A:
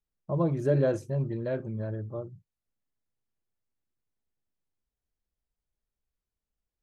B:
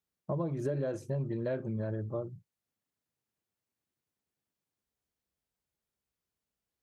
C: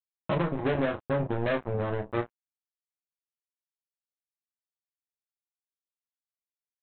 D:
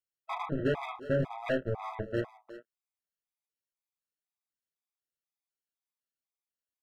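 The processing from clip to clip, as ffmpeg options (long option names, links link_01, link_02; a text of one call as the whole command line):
ffmpeg -i in.wav -af "highpass=100,acompressor=threshold=-32dB:ratio=12,volume=2.5dB" out.wav
ffmpeg -i in.wav -af "aresample=8000,acrusher=bits=4:mix=0:aa=0.5,aresample=44100,aecho=1:1:11|34:0.473|0.422,volume=4.5dB" out.wav
ffmpeg -i in.wav -filter_complex "[0:a]asoftclip=type=hard:threshold=-20.5dB,asplit=2[link_01][link_02];[link_02]adelay=360,highpass=300,lowpass=3400,asoftclip=type=hard:threshold=-29dB,volume=-11dB[link_03];[link_01][link_03]amix=inputs=2:normalize=0,afftfilt=real='re*gt(sin(2*PI*2*pts/sr)*(1-2*mod(floor(b*sr/1024/650),2)),0)':imag='im*gt(sin(2*PI*2*pts/sr)*(1-2*mod(floor(b*sr/1024/650),2)),0)':win_size=1024:overlap=0.75" out.wav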